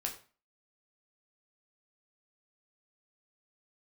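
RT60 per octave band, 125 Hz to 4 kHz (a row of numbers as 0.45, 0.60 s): 0.40, 0.40, 0.35, 0.40, 0.35, 0.30 s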